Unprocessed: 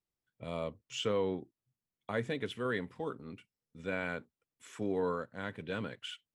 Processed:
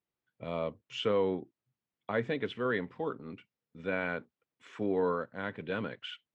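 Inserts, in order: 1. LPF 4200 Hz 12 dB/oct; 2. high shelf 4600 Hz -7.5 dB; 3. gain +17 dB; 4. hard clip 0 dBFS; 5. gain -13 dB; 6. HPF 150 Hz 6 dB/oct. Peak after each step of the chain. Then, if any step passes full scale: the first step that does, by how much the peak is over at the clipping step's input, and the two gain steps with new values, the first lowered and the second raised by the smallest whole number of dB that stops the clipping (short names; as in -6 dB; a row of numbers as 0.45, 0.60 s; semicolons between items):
-20.0, -20.5, -3.5, -3.5, -16.5, -17.5 dBFS; no overload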